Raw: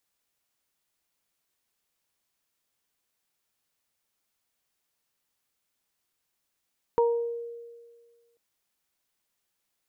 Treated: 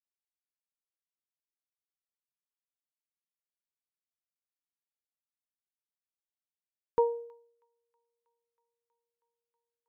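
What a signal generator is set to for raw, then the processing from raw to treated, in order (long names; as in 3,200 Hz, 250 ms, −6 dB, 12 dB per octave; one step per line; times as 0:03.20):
harmonic partials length 1.39 s, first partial 469 Hz, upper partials −4 dB, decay 1.70 s, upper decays 0.46 s, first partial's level −18.5 dB
delay with a high-pass on its return 320 ms, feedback 85%, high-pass 1,400 Hz, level −7 dB
expander for the loud parts 2.5 to 1, over −43 dBFS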